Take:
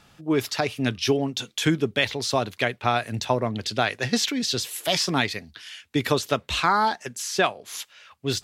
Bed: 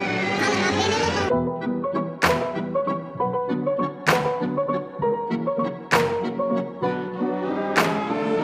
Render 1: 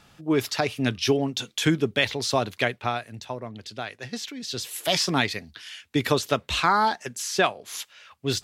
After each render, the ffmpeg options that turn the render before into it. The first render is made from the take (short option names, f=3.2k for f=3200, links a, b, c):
-filter_complex "[0:a]asplit=3[a][b][c];[a]atrim=end=3.08,asetpts=PTS-STARTPTS,afade=t=out:st=2.66:d=0.42:silence=0.298538[d];[b]atrim=start=3.08:end=4.41,asetpts=PTS-STARTPTS,volume=-10.5dB[e];[c]atrim=start=4.41,asetpts=PTS-STARTPTS,afade=t=in:d=0.42:silence=0.298538[f];[d][e][f]concat=n=3:v=0:a=1"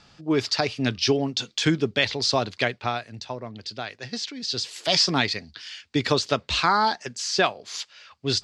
-af "lowpass=f=7.4k:w=0.5412,lowpass=f=7.4k:w=1.3066,equalizer=f=4.7k:t=o:w=0.37:g=8.5"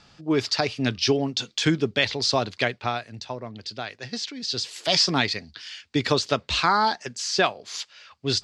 -af anull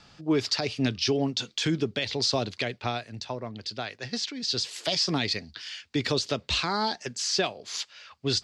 -filter_complex "[0:a]acrossover=split=700|2100[a][b][c];[b]acompressor=threshold=-36dB:ratio=6[d];[a][d][c]amix=inputs=3:normalize=0,alimiter=limit=-15.5dB:level=0:latency=1:release=113"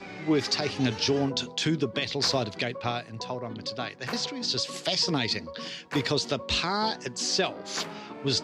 -filter_complex "[1:a]volume=-17dB[a];[0:a][a]amix=inputs=2:normalize=0"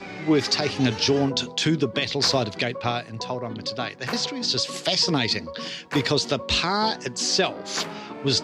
-af "volume=4.5dB"